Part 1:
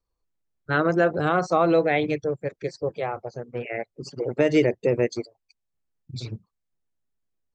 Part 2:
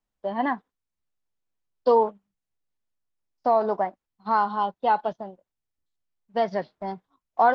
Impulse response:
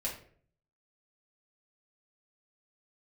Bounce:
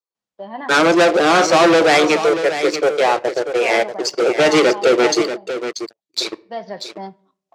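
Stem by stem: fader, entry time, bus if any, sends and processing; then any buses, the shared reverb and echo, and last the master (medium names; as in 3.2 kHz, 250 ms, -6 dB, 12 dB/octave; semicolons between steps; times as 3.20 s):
-1.5 dB, 0.00 s, send -16.5 dB, echo send -9 dB, elliptic high-pass 320 Hz; waveshaping leveller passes 5
-0.5 dB, 0.15 s, send -16 dB, no echo send, auto duck -10 dB, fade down 0.95 s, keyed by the first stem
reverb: on, RT60 0.55 s, pre-delay 5 ms
echo: delay 637 ms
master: band-pass 130–6900 Hz; treble shelf 3.9 kHz +7.5 dB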